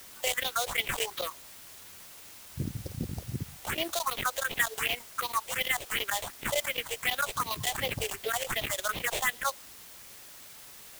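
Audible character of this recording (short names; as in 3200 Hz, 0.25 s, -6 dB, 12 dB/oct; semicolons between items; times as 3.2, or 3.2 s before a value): aliases and images of a low sample rate 5200 Hz, jitter 20%; phasing stages 4, 2.7 Hz, lowest notch 210–1500 Hz; chopped level 9 Hz, duty 90%; a quantiser's noise floor 8-bit, dither triangular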